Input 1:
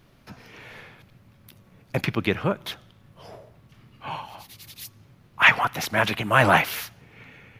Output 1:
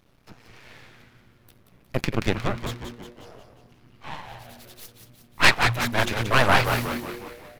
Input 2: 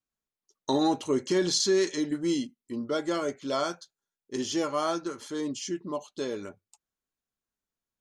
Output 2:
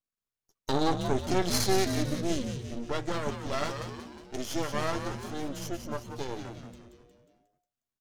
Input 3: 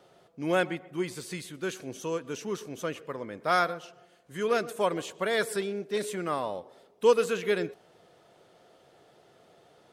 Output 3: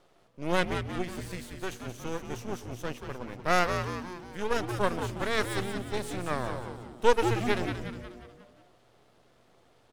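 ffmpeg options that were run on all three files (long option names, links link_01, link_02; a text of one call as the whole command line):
ffmpeg -i in.wav -filter_complex "[0:a]aeval=exprs='0.891*(cos(1*acos(clip(val(0)/0.891,-1,1)))-cos(1*PI/2))+0.158*(cos(6*acos(clip(val(0)/0.891,-1,1)))-cos(6*PI/2))':channel_layout=same,aeval=exprs='max(val(0),0)':channel_layout=same,asplit=7[link_01][link_02][link_03][link_04][link_05][link_06][link_07];[link_02]adelay=180,afreqshift=-120,volume=-7dB[link_08];[link_03]adelay=360,afreqshift=-240,volume=-12.5dB[link_09];[link_04]adelay=540,afreqshift=-360,volume=-18dB[link_10];[link_05]adelay=720,afreqshift=-480,volume=-23.5dB[link_11];[link_06]adelay=900,afreqshift=-600,volume=-29.1dB[link_12];[link_07]adelay=1080,afreqshift=-720,volume=-34.6dB[link_13];[link_01][link_08][link_09][link_10][link_11][link_12][link_13]amix=inputs=7:normalize=0,volume=-1dB" out.wav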